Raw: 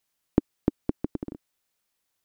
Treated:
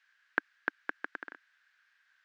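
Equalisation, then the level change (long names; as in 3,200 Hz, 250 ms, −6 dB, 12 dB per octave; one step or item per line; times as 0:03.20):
high-pass with resonance 1,600 Hz, resonance Q 9.6
high-frequency loss of the air 190 metres
+8.5 dB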